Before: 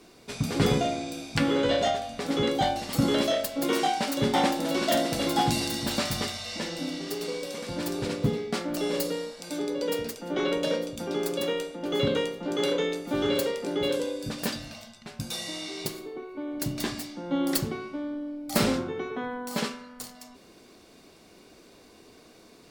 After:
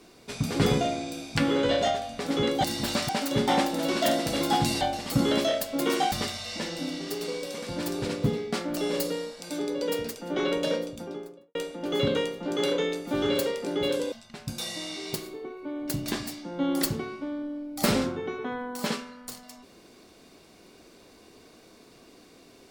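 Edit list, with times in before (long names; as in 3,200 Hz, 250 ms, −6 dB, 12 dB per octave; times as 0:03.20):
0:02.64–0:03.95: swap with 0:05.67–0:06.12
0:10.68–0:11.55: fade out and dull
0:14.12–0:14.84: remove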